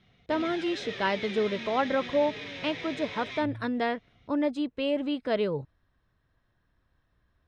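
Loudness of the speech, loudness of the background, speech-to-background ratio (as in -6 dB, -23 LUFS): -30.0 LUFS, -38.5 LUFS, 8.5 dB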